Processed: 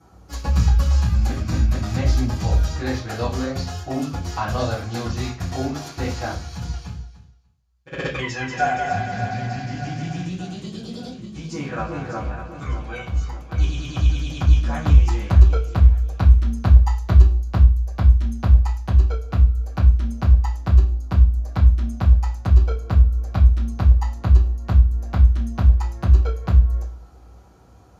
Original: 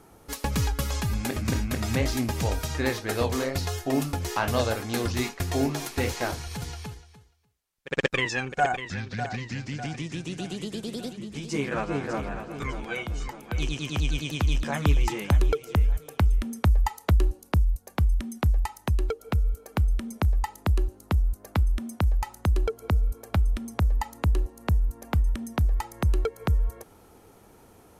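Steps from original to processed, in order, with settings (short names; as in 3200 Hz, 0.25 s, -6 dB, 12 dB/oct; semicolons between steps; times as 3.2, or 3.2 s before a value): 8.21–10.27 multi-head echo 94 ms, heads second and third, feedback 51%, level -6 dB; reverb RT60 0.40 s, pre-delay 3 ms, DRR -13 dB; gain -10 dB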